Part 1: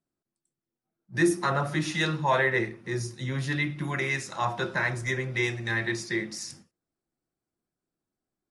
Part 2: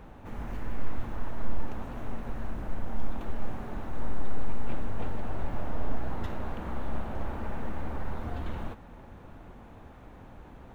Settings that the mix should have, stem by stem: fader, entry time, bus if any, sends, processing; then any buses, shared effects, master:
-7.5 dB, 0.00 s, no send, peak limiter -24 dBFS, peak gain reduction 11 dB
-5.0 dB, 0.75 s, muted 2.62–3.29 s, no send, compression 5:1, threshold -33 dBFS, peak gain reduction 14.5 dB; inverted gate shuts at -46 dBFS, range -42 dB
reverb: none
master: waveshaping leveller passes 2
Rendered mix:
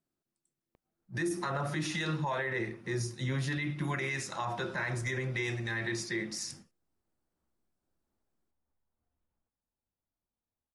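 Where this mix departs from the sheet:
stem 1 -7.5 dB -> -1.0 dB; master: missing waveshaping leveller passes 2

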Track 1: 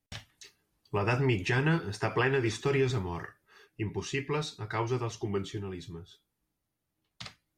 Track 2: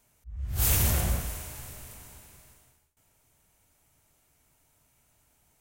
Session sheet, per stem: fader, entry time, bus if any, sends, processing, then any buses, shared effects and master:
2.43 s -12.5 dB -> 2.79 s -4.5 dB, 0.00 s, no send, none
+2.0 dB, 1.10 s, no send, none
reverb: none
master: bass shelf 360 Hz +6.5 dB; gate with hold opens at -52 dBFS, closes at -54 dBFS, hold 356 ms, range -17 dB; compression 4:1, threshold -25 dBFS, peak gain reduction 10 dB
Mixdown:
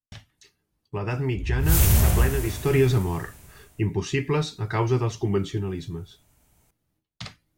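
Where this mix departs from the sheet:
stem 1 -12.5 dB -> -3.5 dB; master: missing compression 4:1, threshold -25 dBFS, peak gain reduction 10 dB

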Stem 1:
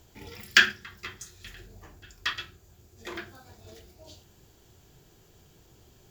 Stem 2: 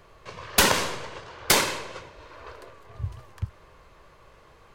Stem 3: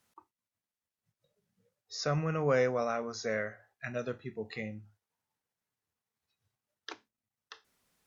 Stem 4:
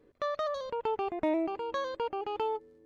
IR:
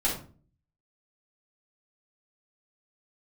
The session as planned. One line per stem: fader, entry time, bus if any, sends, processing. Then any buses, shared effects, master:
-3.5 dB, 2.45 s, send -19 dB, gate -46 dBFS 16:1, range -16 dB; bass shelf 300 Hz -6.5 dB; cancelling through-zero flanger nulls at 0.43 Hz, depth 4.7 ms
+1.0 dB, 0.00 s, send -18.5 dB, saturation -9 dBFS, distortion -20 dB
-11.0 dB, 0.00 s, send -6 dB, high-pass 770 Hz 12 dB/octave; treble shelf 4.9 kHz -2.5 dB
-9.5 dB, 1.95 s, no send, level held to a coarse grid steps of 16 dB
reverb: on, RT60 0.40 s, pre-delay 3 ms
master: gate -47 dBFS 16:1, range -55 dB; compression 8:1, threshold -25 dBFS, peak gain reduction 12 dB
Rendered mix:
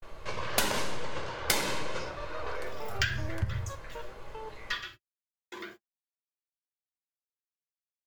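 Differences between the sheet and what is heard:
stem 2: missing saturation -9 dBFS, distortion -20 dB; stem 3 -11.0 dB -> -21.5 dB; reverb return +8.0 dB

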